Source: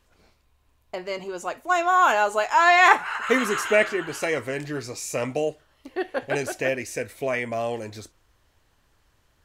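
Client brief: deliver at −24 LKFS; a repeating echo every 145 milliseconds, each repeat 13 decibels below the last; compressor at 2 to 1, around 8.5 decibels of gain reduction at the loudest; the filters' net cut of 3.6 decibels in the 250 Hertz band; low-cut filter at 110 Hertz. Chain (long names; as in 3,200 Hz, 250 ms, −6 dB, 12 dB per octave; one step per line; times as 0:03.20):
high-pass filter 110 Hz
parametric band 250 Hz −4.5 dB
downward compressor 2 to 1, threshold −26 dBFS
repeating echo 145 ms, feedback 22%, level −13 dB
level +4.5 dB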